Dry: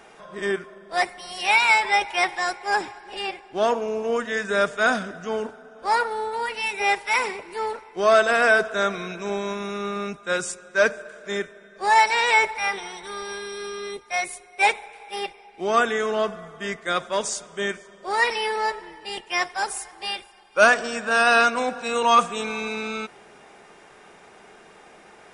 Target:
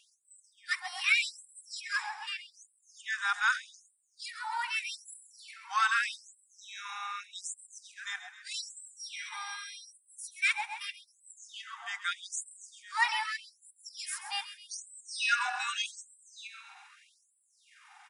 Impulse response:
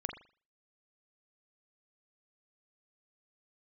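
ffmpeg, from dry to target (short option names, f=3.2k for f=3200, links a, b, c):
-filter_complex "[0:a]atempo=1.4,asplit=7[a][b][c][d][e][f][g];[b]adelay=132,afreqshift=31,volume=-12dB[h];[c]adelay=264,afreqshift=62,volume=-17.5dB[i];[d]adelay=396,afreqshift=93,volume=-23dB[j];[e]adelay=528,afreqshift=124,volume=-28.5dB[k];[f]adelay=660,afreqshift=155,volume=-34.1dB[l];[g]adelay=792,afreqshift=186,volume=-39.6dB[m];[a][h][i][j][k][l][m]amix=inputs=7:normalize=0,afftfilt=real='re*gte(b*sr/1024,690*pow(7600/690,0.5+0.5*sin(2*PI*0.82*pts/sr)))':imag='im*gte(b*sr/1024,690*pow(7600/690,0.5+0.5*sin(2*PI*0.82*pts/sr)))':win_size=1024:overlap=0.75,volume=-5dB"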